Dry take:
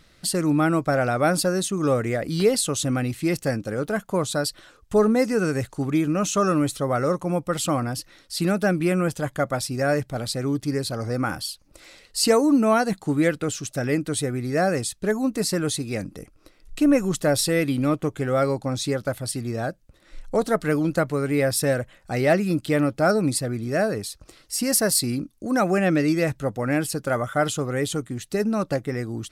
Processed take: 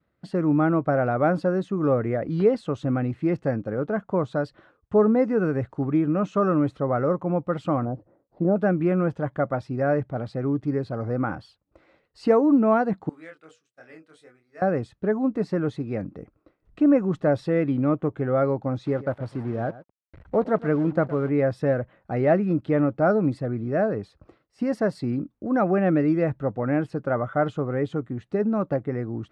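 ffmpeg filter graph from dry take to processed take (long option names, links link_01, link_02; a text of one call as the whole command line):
ffmpeg -i in.wav -filter_complex "[0:a]asettb=1/sr,asplit=3[link_01][link_02][link_03];[link_01]atrim=end=7.854[link_04];[link_02]atrim=start=7.85:end=8.56,asetpts=PTS-STARTPTS,afade=type=in:duration=0.004:curve=qsin,afade=type=out:start_time=0.706:duration=0.004:curve=qsin,aeval=exprs='if(lt(val(0),0),0.708*val(0),val(0))':channel_layout=same,lowpass=frequency=630:width_type=q:width=1.7,bandreject=frequency=50:width_type=h:width=6,bandreject=frequency=100:width_type=h:width=6[link_05];[link_03]atrim=start=8.556[link_06];[link_04][link_05]acrossfade=duration=0.004:curve1=hsin:curve2=qsin[link_07];[link_07][link_06]acrossfade=duration=0.004:curve1=qsin:curve2=hsin,asettb=1/sr,asplit=3[link_08][link_09][link_10];[link_08]atrim=end=13.094[link_11];[link_09]atrim=start=13.09:end=14.62,asetpts=PTS-STARTPTS,afade=type=in:duration=0.004:curve=qsin,afade=type=out:start_time=1.526:duration=0.004:curve=qsin,aderivative,bandreject=frequency=60:width_type=h:width=6,bandreject=frequency=120:width_type=h:width=6,bandreject=frequency=180:width_type=h:width=6,bandreject=frequency=240:width_type=h:width=6,bandreject=frequency=300:width_type=h:width=6,bandreject=frequency=360:width_type=h:width=6,bandreject=frequency=420:width_type=h:width=6,bandreject=frequency=480:width_type=h:width=6,bandreject=frequency=540:width_type=h:width=6,bandreject=frequency=600:width_type=h:width=6,asplit=2[link_12][link_13];[link_13]adelay=25,volume=-3.5dB[link_14];[link_12][link_14]amix=inputs=2:normalize=0,atrim=end_sample=67473[link_15];[link_10]atrim=start=14.616[link_16];[link_11][link_15]acrossfade=duration=0.004:curve1=hsin:curve2=qsin[link_17];[link_17][link_16]acrossfade=duration=0.004:curve1=qsin:curve2=hsin,asettb=1/sr,asplit=3[link_18][link_19][link_20];[link_18]atrim=end=18.864[link_21];[link_19]atrim=start=18.86:end=21.29,asetpts=PTS-STARTPTS,afade=type=in:duration=0.004:curve=qsin,afade=type=out:start_time=2.426:duration=0.004:curve=qsin,acrusher=bits=5:mix=0:aa=0.5,aecho=1:1:115:0.141,atrim=end_sample=107163[link_22];[link_20]atrim=start=21.286[link_23];[link_21][link_22]acrossfade=duration=0.004:curve1=hsin:curve2=qsin[link_24];[link_24][link_23]acrossfade=duration=0.004:curve1=qsin:curve2=hsin,lowpass=1300,agate=range=-33dB:threshold=-48dB:ratio=3:detection=peak,highpass=73" out.wav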